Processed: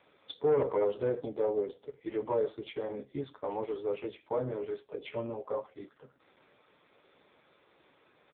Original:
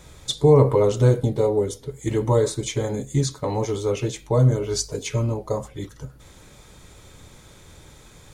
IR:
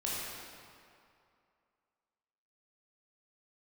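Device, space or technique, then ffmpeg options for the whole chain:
telephone: -filter_complex "[0:a]asplit=3[a][b][c];[a]afade=t=out:st=5:d=0.02[d];[b]asplit=2[e][f];[f]adelay=17,volume=-5dB[g];[e][g]amix=inputs=2:normalize=0,afade=t=in:st=5:d=0.02,afade=t=out:st=5.61:d=0.02[h];[c]afade=t=in:st=5.61:d=0.02[i];[d][h][i]amix=inputs=3:normalize=0,highpass=350,lowpass=3.3k,asoftclip=type=tanh:threshold=-12.5dB,volume=-6.5dB" -ar 8000 -c:a libopencore_amrnb -b:a 5900

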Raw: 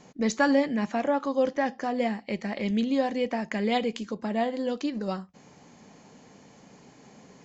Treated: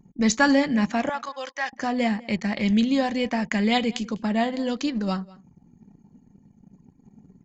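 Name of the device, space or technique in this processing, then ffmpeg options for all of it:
smiley-face EQ: -filter_complex "[0:a]asettb=1/sr,asplit=3[a][b][c];[a]atrim=end=1.094[d];[b]atrim=start=1.09:end=1.73,asetpts=PTS-STARTPTS,afade=t=in:d=0.004:c=qsin,afade=t=out:st=0.636:d=0.004:c=qsin,highpass=1k[e];[c]atrim=start=1.726[f];[d][e]acrossfade=d=0.004:c1=hsin:c2=qsin[g];[g][f]acrossfade=d=0.004:c1=qsin:c2=hsin,lowshelf=f=200:g=6.5,equalizer=f=440:t=o:w=1.6:g=-7.5,highshelf=f=5.4k:g=5,anlmdn=0.0251,asplit=2[h][i];[i]adelay=198.3,volume=-22dB,highshelf=f=4k:g=-4.46[j];[h][j]amix=inputs=2:normalize=0,volume=6dB"

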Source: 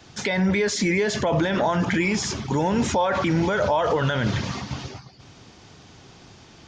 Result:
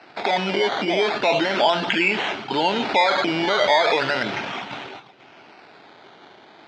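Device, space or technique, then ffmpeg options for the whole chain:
circuit-bent sampling toy: -af "acrusher=samples=13:mix=1:aa=0.000001:lfo=1:lforange=7.8:lforate=0.36,highpass=500,equalizer=f=510:t=q:w=4:g=-7,equalizer=f=1.1k:t=q:w=4:g=-8,equalizer=f=1.8k:t=q:w=4:g=-5,lowpass=f=4.1k:w=0.5412,lowpass=f=4.1k:w=1.3066,volume=8.5dB"

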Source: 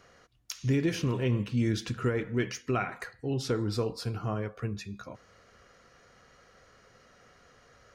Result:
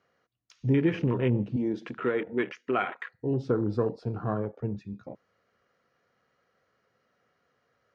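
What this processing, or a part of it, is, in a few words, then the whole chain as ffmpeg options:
over-cleaned archive recording: -filter_complex "[0:a]asettb=1/sr,asplit=3[a][b][c];[a]atrim=end=1.564[d];[b]atrim=start=1.56:end=3.13,asetpts=PTS-STARTPTS,afade=t=in:d=0.004:c=qsin,afade=t=out:st=1.566:d=0.004:c=qsin,highpass=280[e];[c]atrim=start=3.126[f];[d][e]acrossfade=d=0.004:c1=hsin:c2=qsin[g];[g][f]acrossfade=d=0.004:c1=qsin:c2=hsin,highpass=120,lowpass=6.1k,afwtdn=0.0112,highshelf=f=5.4k:g=-10,volume=4dB"

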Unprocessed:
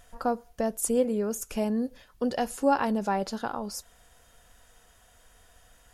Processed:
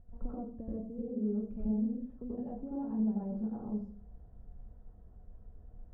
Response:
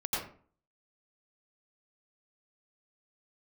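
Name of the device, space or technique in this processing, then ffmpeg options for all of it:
television next door: -filter_complex "[0:a]acompressor=threshold=-39dB:ratio=4,lowpass=260[a];[1:a]atrim=start_sample=2205[b];[a][b]afir=irnorm=-1:irlink=0,volume=2.5dB"

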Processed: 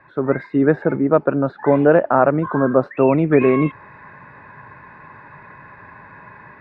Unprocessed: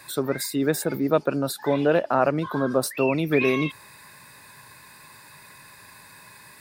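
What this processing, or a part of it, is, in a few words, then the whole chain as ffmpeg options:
action camera in a waterproof case: -af "lowpass=f=1.8k:w=0.5412,lowpass=f=1.8k:w=1.3066,dynaudnorm=f=150:g=3:m=10dB" -ar 48000 -c:a aac -b:a 128k

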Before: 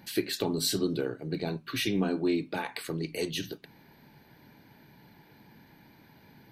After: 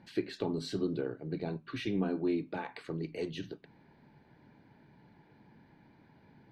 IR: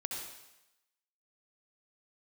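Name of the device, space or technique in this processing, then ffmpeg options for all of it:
through cloth: -af "lowpass=6.3k,highshelf=f=2.8k:g=-13,volume=-3.5dB"

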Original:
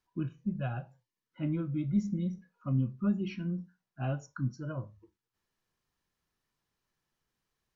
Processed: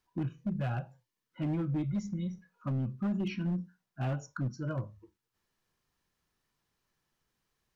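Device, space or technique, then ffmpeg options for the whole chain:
limiter into clipper: -filter_complex "[0:a]asettb=1/sr,asplit=3[a][b][c];[a]atrim=end=1.844[d];[b]atrim=start=1.84:end=2.52,asetpts=PTS-STARTPTS,afade=t=in:d=0.004:c=qsin,afade=t=out:st=0.676:d=0.004:c=qsin,equalizer=f=250:t=o:w=1:g=-10,equalizer=f=500:t=o:w=1:g=-4,equalizer=f=1k:t=o:w=1:g=3[e];[c]atrim=start=2.516[f];[d][e]acrossfade=d=0.004:c1=hsin:c2=qsin[g];[g][f]acrossfade=d=0.004:c1=qsin:c2=hsin,alimiter=level_in=2.5dB:limit=-24dB:level=0:latency=1:release=51,volume=-2.5dB,asoftclip=type=hard:threshold=-30.5dB,volume=3dB"

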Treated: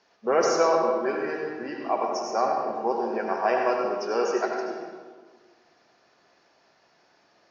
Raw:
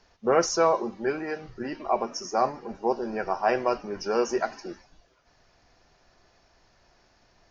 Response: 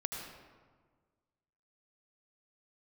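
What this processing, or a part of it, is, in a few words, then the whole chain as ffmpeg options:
supermarket ceiling speaker: -filter_complex "[0:a]highpass=250,lowpass=6.4k[a];[1:a]atrim=start_sample=2205[b];[a][b]afir=irnorm=-1:irlink=0,asettb=1/sr,asplit=3[c][d][e];[c]atrim=end=3.904[f];[d]atrim=start=3.9:end=4.71,asetpts=PTS-STARTPTS,afade=t=in:d=0.004:c=qsin,afade=t=out:st=0.806:d=0.004:c=qsin,highpass=150[g];[e]atrim=start=4.706[h];[f][g]acrossfade=d=0.004:c1=hsin:c2=qsin[i];[i][h]acrossfade=d=0.004:c1=qsin:c2=hsin"

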